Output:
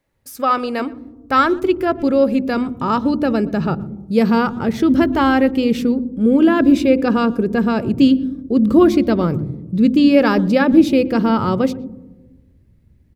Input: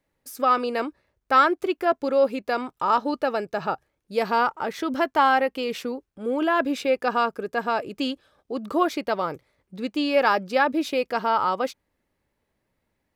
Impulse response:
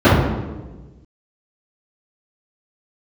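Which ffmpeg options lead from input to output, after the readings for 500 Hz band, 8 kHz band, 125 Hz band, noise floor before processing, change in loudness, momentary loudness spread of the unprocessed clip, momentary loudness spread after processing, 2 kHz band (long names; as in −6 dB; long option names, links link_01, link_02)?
+6.0 dB, can't be measured, +21.5 dB, −77 dBFS, +8.0 dB, 11 LU, 9 LU, +2.5 dB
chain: -filter_complex "[0:a]asplit=2[link_01][link_02];[link_02]adelay=120,highpass=300,lowpass=3400,asoftclip=type=hard:threshold=-15dB,volume=-22dB[link_03];[link_01][link_03]amix=inputs=2:normalize=0,asplit=2[link_04][link_05];[1:a]atrim=start_sample=2205,lowpass=1100,lowshelf=frequency=200:gain=11[link_06];[link_05][link_06]afir=irnorm=-1:irlink=0,volume=-48.5dB[link_07];[link_04][link_07]amix=inputs=2:normalize=0,asubboost=boost=10:cutoff=250,volume=4dB"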